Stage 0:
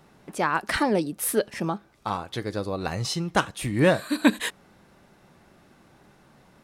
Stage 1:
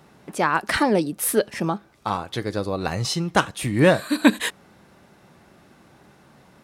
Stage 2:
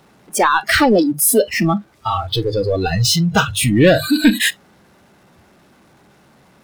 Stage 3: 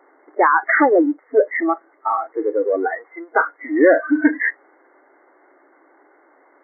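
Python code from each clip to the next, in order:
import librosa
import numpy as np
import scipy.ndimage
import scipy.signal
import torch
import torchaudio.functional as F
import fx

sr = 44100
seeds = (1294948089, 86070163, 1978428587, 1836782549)

y1 = scipy.signal.sosfilt(scipy.signal.butter(2, 53.0, 'highpass', fs=sr, output='sos'), x)
y1 = F.gain(torch.from_numpy(y1), 3.5).numpy()
y2 = fx.hum_notches(y1, sr, base_hz=50, count=3)
y2 = fx.power_curve(y2, sr, exponent=0.5)
y2 = fx.noise_reduce_blind(y2, sr, reduce_db=23)
y3 = fx.brickwall_bandpass(y2, sr, low_hz=270.0, high_hz=2200.0)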